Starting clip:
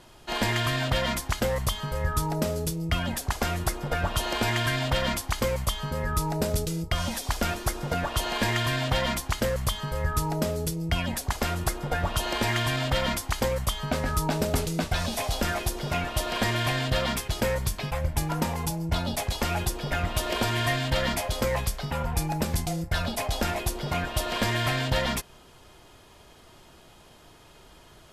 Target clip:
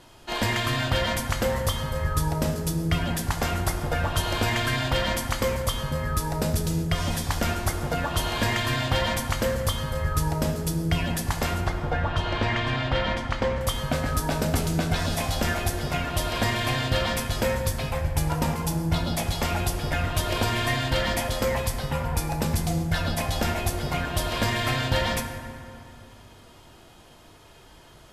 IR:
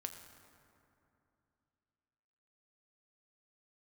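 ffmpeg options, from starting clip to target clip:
-filter_complex "[0:a]asettb=1/sr,asplit=3[a][b][c];[a]atrim=end=11.614[d];[b]atrim=start=11.61:end=13.61,asetpts=PTS-STARTPTS,afade=t=in:d=0.004:c=qsin,afade=t=out:st=1.996:d=0.004:c=qsin,lowpass=3.4k[e];[c]atrim=start=13.606[f];[d][e]acrossfade=d=0.004:c1=hsin:c2=qsin[g];[g][f]acrossfade=d=0.004:c1=qsin:c2=hsin[h];[1:a]atrim=start_sample=2205,asetrate=48510,aresample=44100[i];[h][i]afir=irnorm=-1:irlink=0,volume=5dB"

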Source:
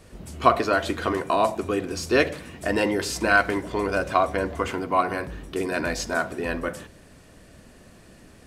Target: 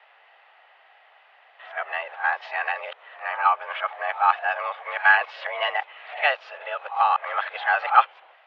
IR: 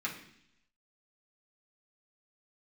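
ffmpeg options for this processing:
-af "areverse,highpass=f=590:t=q:w=0.5412,highpass=f=590:t=q:w=1.307,lowpass=f=3.1k:t=q:w=0.5176,lowpass=f=3.1k:t=q:w=0.7071,lowpass=f=3.1k:t=q:w=1.932,afreqshift=150,volume=2.5dB"

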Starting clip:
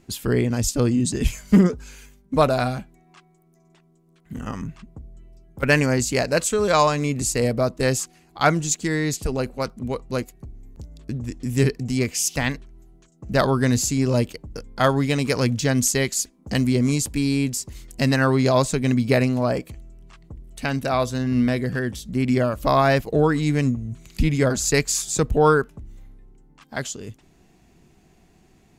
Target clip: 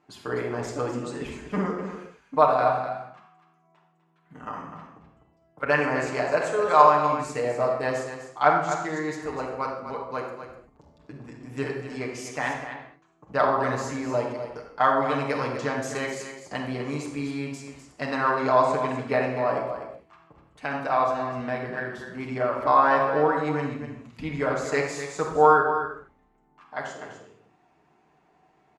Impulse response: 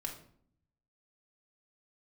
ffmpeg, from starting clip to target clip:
-filter_complex "[0:a]bandpass=f=990:t=q:w=1.4:csg=0,aecho=1:1:250:0.335[a];[1:a]atrim=start_sample=2205,afade=t=out:st=0.17:d=0.01,atrim=end_sample=7938,asetrate=23814,aresample=44100[b];[a][b]afir=irnorm=-1:irlink=0"

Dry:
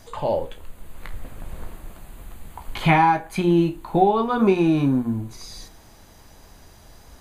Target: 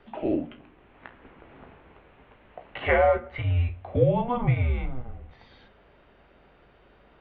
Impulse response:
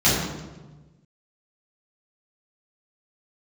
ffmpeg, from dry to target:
-filter_complex "[0:a]aeval=exprs='val(0)+0.00708*(sin(2*PI*60*n/s)+sin(2*PI*2*60*n/s)/2+sin(2*PI*3*60*n/s)/3+sin(2*PI*4*60*n/s)/4+sin(2*PI*5*60*n/s)/5)':c=same,asplit=2[a][b];[1:a]atrim=start_sample=2205[c];[b][c]afir=irnorm=-1:irlink=0,volume=-40dB[d];[a][d]amix=inputs=2:normalize=0,highpass=f=310:t=q:w=0.5412,highpass=f=310:t=q:w=1.307,lowpass=f=3.2k:t=q:w=0.5176,lowpass=f=3.2k:t=q:w=0.7071,lowpass=f=3.2k:t=q:w=1.932,afreqshift=-250,volume=-3dB"

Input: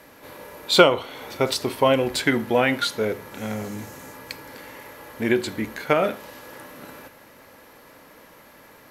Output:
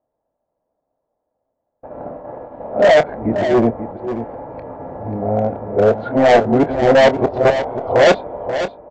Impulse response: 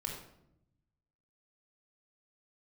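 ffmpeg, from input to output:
-filter_complex "[0:a]areverse,aemphasis=mode=reproduction:type=bsi,agate=range=-38dB:threshold=-40dB:ratio=16:detection=peak,lowpass=f=690:t=q:w=4.9,lowshelf=f=360:g=-7.5,aresample=16000,asoftclip=type=hard:threshold=-16dB,aresample=44100,asplit=2[a][b];[b]adelay=26,volume=-12.5dB[c];[a][c]amix=inputs=2:normalize=0,asplit=2[d][e];[e]aecho=0:1:536:0.316[f];[d][f]amix=inputs=2:normalize=0,volume=8dB"

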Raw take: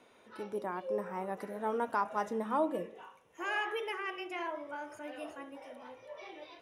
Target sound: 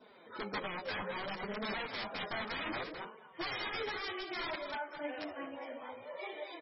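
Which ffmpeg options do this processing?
-filter_complex "[0:a]aeval=exprs='(mod(44.7*val(0)+1,2)-1)/44.7':c=same,asplit=2[a][b];[b]aecho=0:1:213:0.316[c];[a][c]amix=inputs=2:normalize=0,adynamicequalizer=threshold=0.00126:dfrequency=2200:dqfactor=2.1:tfrequency=2200:tqfactor=2.1:attack=5:release=100:ratio=0.375:range=1.5:mode=boostabove:tftype=bell,alimiter=level_in=10dB:limit=-24dB:level=0:latency=1:release=280,volume=-10dB,lowshelf=f=110:g=-5,bandreject=f=2.7k:w=9.6,flanger=delay=4.6:depth=7.4:regen=6:speed=0.63:shape=sinusoidal,volume=7dB" -ar 24000 -c:a libmp3lame -b:a 16k

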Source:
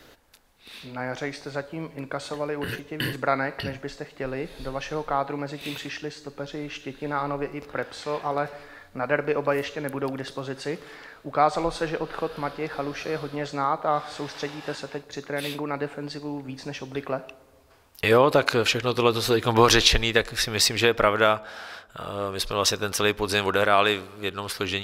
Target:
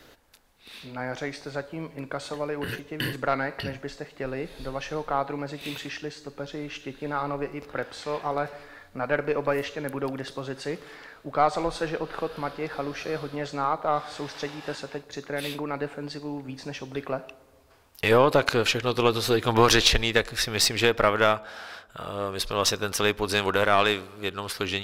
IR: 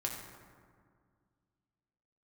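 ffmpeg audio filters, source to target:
-af "aeval=exprs='0.794*(cos(1*acos(clip(val(0)/0.794,-1,1)))-cos(1*PI/2))+0.0708*(cos(3*acos(clip(val(0)/0.794,-1,1)))-cos(3*PI/2))+0.0891*(cos(4*acos(clip(val(0)/0.794,-1,1)))-cos(4*PI/2))+0.0158*(cos(6*acos(clip(val(0)/0.794,-1,1)))-cos(6*PI/2))':c=same,acontrast=50,volume=-4.5dB"

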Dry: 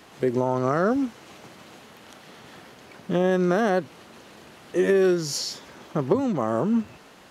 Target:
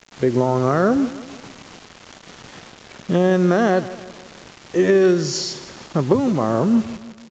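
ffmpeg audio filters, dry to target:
-filter_complex "[0:a]lowshelf=f=130:g=8,acrusher=bits=6:mix=0:aa=0.000001,asplit=2[a][b];[b]aecho=0:1:159|318|477|636:0.158|0.0777|0.0381|0.0186[c];[a][c]amix=inputs=2:normalize=0,aresample=16000,aresample=44100,volume=4dB"

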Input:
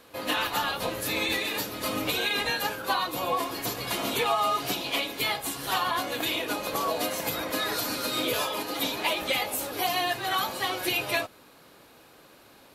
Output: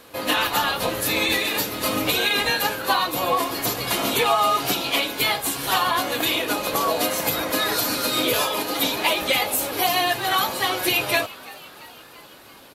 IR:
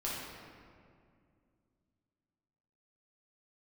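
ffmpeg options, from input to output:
-filter_complex "[0:a]equalizer=f=14k:t=o:w=1.4:g=2.5,asplit=7[a][b][c][d][e][f][g];[b]adelay=338,afreqshift=120,volume=-20dB[h];[c]adelay=676,afreqshift=240,volume=-23.9dB[i];[d]adelay=1014,afreqshift=360,volume=-27.8dB[j];[e]adelay=1352,afreqshift=480,volume=-31.6dB[k];[f]adelay=1690,afreqshift=600,volume=-35.5dB[l];[g]adelay=2028,afreqshift=720,volume=-39.4dB[m];[a][h][i][j][k][l][m]amix=inputs=7:normalize=0,volume=6dB"

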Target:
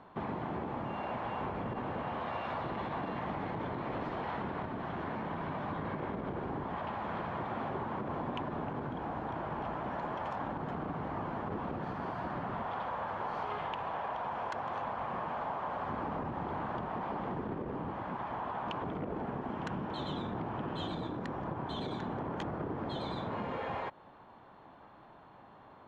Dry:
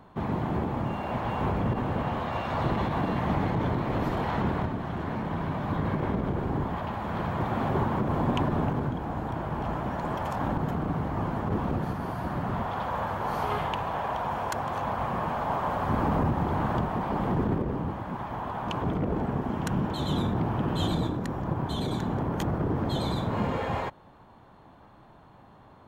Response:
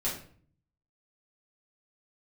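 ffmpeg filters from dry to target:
-af "lowpass=3.6k,lowshelf=f=180:g=-12,acompressor=threshold=-34dB:ratio=6"

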